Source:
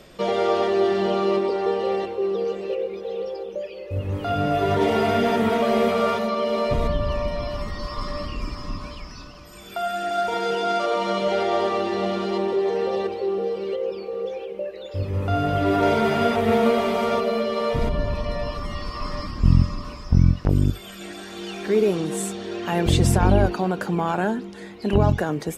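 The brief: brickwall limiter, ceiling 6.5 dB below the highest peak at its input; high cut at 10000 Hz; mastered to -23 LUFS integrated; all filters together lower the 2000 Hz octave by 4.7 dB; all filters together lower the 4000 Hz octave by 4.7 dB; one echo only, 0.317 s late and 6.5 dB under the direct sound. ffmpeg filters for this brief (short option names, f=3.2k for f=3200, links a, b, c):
-af "lowpass=10k,equalizer=f=2k:t=o:g=-5.5,equalizer=f=4k:t=o:g=-4,alimiter=limit=-10.5dB:level=0:latency=1,aecho=1:1:317:0.473,volume=0.5dB"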